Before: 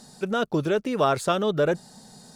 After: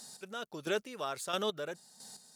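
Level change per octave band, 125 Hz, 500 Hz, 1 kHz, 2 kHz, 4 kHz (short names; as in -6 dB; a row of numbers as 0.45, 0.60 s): -20.5, -13.5, -13.0, -9.0, -5.0 dB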